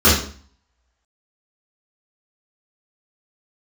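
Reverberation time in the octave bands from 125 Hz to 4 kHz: 0.55 s, 0.55 s, 0.45 s, 0.45 s, 0.45 s, 0.45 s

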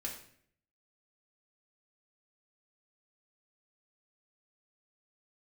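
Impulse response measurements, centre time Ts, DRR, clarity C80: 26 ms, -3.5 dB, 10.0 dB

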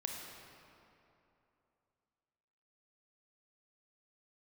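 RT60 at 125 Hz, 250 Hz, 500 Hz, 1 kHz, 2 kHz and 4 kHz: 3.0 s, 2.9 s, 3.0 s, 2.9 s, 2.3 s, 1.8 s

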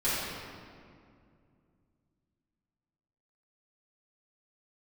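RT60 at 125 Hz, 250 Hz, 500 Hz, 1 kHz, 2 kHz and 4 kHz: 3.5 s, 3.2 s, 2.5 s, 2.1 s, 1.8 s, 1.4 s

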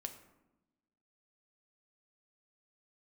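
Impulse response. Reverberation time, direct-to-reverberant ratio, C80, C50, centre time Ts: 0.95 s, 5.5 dB, 12.5 dB, 10.5 dB, 13 ms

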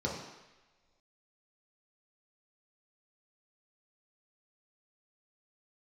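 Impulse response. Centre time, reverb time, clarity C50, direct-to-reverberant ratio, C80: 50 ms, no single decay rate, 3.0 dB, -4.0 dB, 6.0 dB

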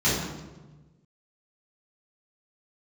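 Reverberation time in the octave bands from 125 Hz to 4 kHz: 1.7 s, 1.5 s, 1.3 s, 1.1 s, 0.90 s, 0.80 s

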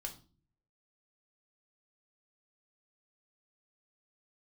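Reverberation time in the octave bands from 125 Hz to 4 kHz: 0.85 s, 0.65 s, 0.45 s, 0.35 s, 0.30 s, 0.35 s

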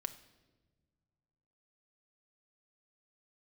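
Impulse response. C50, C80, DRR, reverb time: 14.0 dB, 16.0 dB, 9.0 dB, no single decay rate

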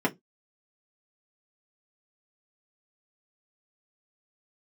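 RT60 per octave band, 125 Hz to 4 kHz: 0.25 s, 0.25 s, 0.20 s, 0.10 s, 0.15 s, 0.15 s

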